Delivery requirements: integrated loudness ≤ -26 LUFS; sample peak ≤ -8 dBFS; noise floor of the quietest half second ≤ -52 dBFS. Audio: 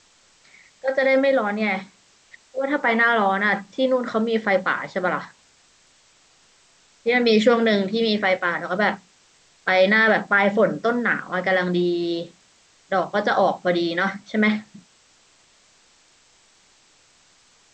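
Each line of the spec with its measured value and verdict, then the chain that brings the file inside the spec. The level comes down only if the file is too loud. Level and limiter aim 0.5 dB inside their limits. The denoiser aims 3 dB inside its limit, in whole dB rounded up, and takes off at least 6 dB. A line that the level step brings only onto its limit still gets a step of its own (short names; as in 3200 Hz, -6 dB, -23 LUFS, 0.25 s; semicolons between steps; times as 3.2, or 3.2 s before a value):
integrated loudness -21.0 LUFS: fail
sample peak -5.5 dBFS: fail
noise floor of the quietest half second -57 dBFS: OK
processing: gain -5.5 dB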